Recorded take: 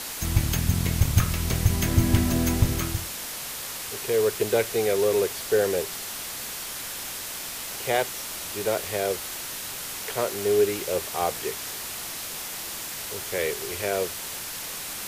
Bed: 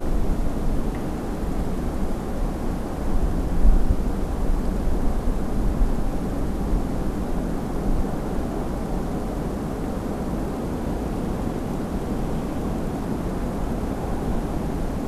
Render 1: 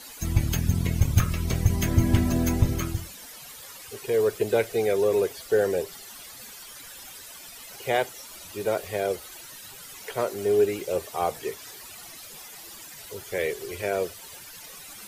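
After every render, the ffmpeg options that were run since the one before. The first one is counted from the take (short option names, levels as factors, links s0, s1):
-af "afftdn=nr=14:nf=-35"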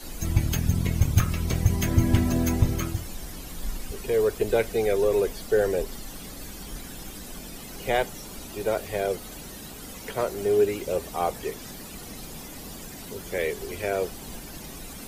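-filter_complex "[1:a]volume=0.15[s0];[0:a][s0]amix=inputs=2:normalize=0"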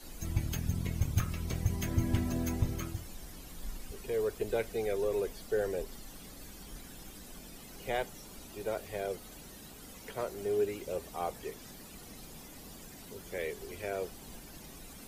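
-af "volume=0.335"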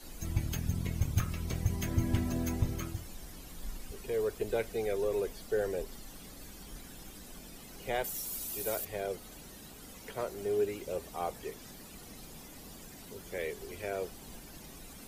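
-filter_complex "[0:a]asettb=1/sr,asplit=3[s0][s1][s2];[s0]atrim=end=8.044[s3];[s1]atrim=start=8.04:end=8.85,asetpts=PTS-STARTPTS,afade=t=in:d=0.004:c=qsin,afade=t=out:st=0.806:d=0.004:c=qsin,aemphasis=mode=production:type=75fm[s4];[s2]atrim=start=8.846[s5];[s3][s4]acrossfade=d=0.004:c1=hsin:c2=qsin[s6];[s6][s5]acrossfade=d=0.004:c1=qsin:c2=hsin"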